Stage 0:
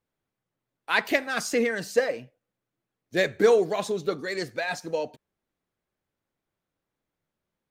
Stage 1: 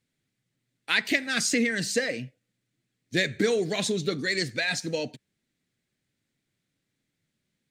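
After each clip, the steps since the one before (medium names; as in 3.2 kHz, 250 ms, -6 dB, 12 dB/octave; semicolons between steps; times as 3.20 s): graphic EQ 125/250/1000/2000/4000/8000 Hz +11/+9/-7/+10/+9/+11 dB; compression 2.5:1, threshold -20 dBFS, peak gain reduction 8 dB; trim -3 dB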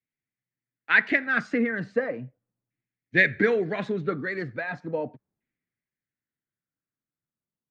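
treble shelf 10 kHz -5 dB; LFO low-pass saw down 0.37 Hz 910–2300 Hz; three bands expanded up and down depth 40%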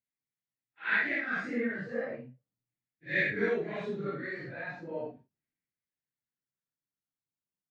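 phase randomisation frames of 200 ms; trim -7.5 dB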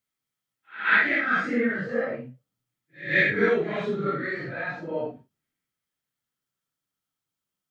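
small resonant body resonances 1.3/3.2 kHz, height 9 dB, ringing for 25 ms; pre-echo 131 ms -18 dB; trim +7.5 dB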